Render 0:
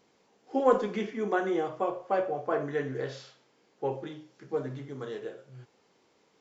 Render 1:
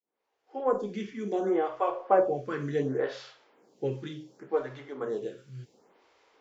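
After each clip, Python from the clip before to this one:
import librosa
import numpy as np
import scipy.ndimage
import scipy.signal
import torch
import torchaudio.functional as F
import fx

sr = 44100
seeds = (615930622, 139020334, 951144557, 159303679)

y = fx.fade_in_head(x, sr, length_s=2.09)
y = fx.stagger_phaser(y, sr, hz=0.69)
y = y * librosa.db_to_amplitude(6.0)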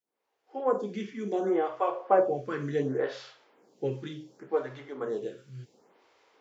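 y = scipy.signal.sosfilt(scipy.signal.butter(2, 75.0, 'highpass', fs=sr, output='sos'), x)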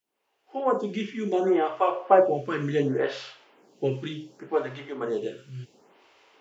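y = fx.peak_eq(x, sr, hz=2800.0, db=7.0, octaves=0.41)
y = fx.notch(y, sr, hz=490.0, q=12.0)
y = y * librosa.db_to_amplitude(5.0)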